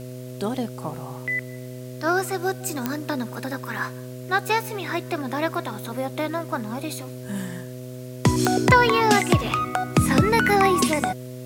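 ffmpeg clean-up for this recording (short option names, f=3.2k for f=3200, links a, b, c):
-af "adeclick=t=4,bandreject=f=126:t=h:w=4,bandreject=f=252:t=h:w=4,bandreject=f=378:t=h:w=4,bandreject=f=504:t=h:w=4,bandreject=f=630:t=h:w=4,agate=range=-21dB:threshold=-28dB"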